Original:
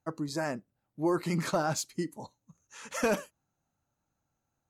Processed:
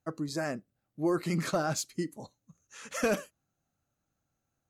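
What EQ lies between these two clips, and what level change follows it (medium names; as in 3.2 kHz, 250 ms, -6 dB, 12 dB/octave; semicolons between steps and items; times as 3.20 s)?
peaking EQ 920 Hz -10.5 dB 0.22 oct; 0.0 dB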